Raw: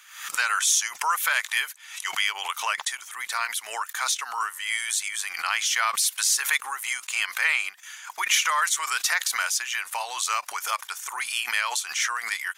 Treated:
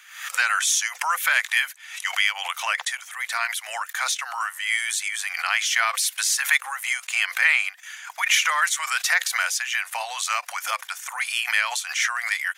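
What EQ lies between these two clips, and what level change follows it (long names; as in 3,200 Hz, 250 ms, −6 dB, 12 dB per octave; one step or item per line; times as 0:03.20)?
Chebyshev high-pass with heavy ripple 500 Hz, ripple 6 dB
+5.0 dB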